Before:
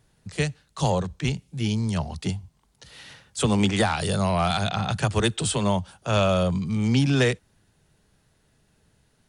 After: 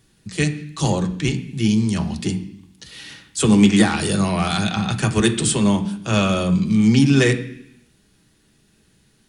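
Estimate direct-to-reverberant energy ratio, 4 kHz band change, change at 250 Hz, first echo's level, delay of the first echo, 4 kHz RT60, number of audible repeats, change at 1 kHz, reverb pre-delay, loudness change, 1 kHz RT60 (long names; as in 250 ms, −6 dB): 4.0 dB, +4.0 dB, +9.0 dB, no echo audible, no echo audible, 0.95 s, no echo audible, +0.5 dB, 3 ms, +6.0 dB, 0.70 s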